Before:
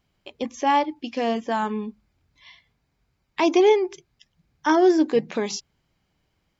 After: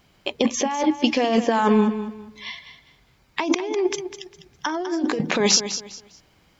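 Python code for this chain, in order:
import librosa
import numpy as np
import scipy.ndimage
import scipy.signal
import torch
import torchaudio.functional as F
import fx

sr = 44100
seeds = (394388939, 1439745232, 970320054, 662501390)

p1 = fx.low_shelf(x, sr, hz=140.0, db=-6.5)
p2 = fx.over_compress(p1, sr, threshold_db=-29.0, ratio=-1.0)
p3 = p2 + fx.echo_feedback(p2, sr, ms=202, feedback_pct=27, wet_db=-11, dry=0)
y = p3 * librosa.db_to_amplitude(7.5)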